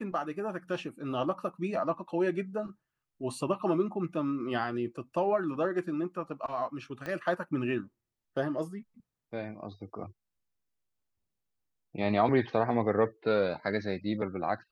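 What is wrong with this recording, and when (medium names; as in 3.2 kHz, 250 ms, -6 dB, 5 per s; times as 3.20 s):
7.06 s: pop -24 dBFS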